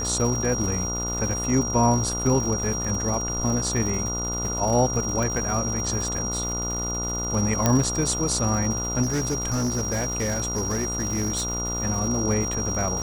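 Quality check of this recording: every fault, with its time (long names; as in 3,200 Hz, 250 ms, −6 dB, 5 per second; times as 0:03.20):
mains buzz 60 Hz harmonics 24 −31 dBFS
surface crackle 290 per second −31 dBFS
whistle 5,700 Hz −28 dBFS
0:05.23: click
0:07.66: click −5 dBFS
0:09.02–0:11.50: clipping −21 dBFS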